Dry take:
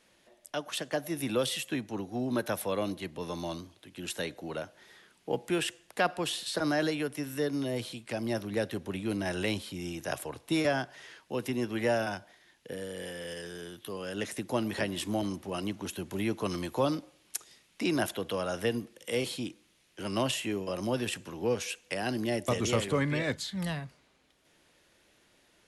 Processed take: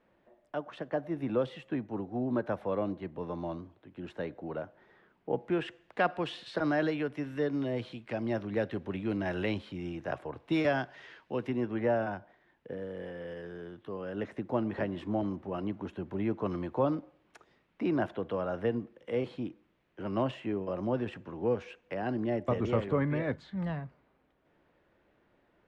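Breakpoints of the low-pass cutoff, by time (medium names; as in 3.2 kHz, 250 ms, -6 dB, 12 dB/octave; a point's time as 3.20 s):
5.31 s 1.3 kHz
6.00 s 2.3 kHz
9.74 s 2.3 kHz
10.31 s 1.4 kHz
10.57 s 3 kHz
11.11 s 3 kHz
11.80 s 1.4 kHz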